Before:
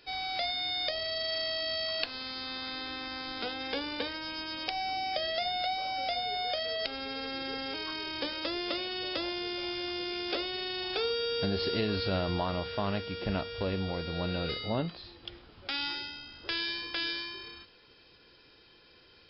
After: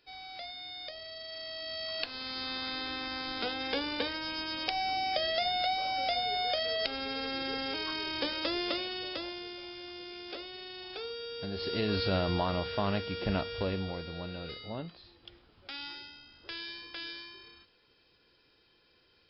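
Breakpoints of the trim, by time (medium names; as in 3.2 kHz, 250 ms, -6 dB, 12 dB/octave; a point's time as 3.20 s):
1.28 s -10.5 dB
2.41 s +1.5 dB
8.62 s +1.5 dB
9.67 s -9 dB
11.40 s -9 dB
11.93 s +1 dB
13.55 s +1 dB
14.32 s -8 dB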